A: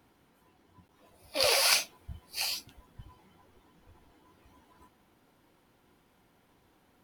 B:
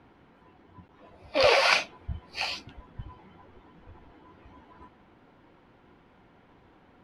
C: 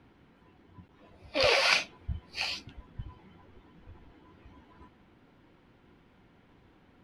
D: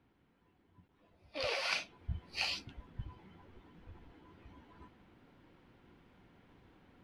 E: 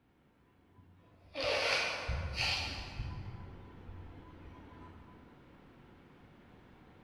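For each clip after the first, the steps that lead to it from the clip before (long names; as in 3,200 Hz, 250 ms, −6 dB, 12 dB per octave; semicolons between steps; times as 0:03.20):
low-pass filter 2,600 Hz 12 dB per octave; level +8.5 dB
parametric band 810 Hz −6.5 dB 2.2 octaves
speech leveller within 5 dB 0.5 s; level −7.5 dB
dense smooth reverb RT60 2.3 s, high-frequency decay 0.55×, DRR −2.5 dB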